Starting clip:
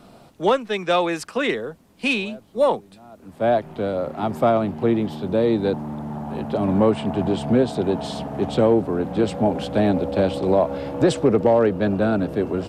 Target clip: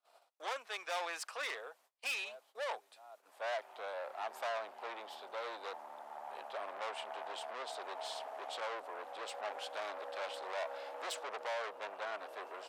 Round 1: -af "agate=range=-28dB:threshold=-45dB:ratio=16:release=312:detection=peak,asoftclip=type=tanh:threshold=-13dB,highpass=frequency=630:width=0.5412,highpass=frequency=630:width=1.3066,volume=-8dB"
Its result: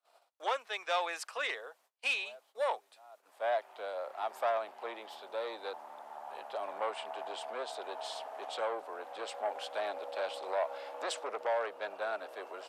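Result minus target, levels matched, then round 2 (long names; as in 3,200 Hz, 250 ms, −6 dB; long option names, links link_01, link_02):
soft clipping: distortion −10 dB
-af "agate=range=-28dB:threshold=-45dB:ratio=16:release=312:detection=peak,asoftclip=type=tanh:threshold=-24.5dB,highpass=frequency=630:width=0.5412,highpass=frequency=630:width=1.3066,volume=-8dB"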